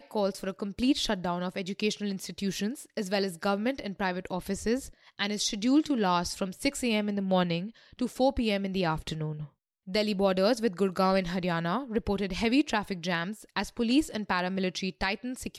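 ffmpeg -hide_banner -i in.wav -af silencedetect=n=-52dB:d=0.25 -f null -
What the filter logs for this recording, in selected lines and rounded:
silence_start: 9.49
silence_end: 9.87 | silence_duration: 0.38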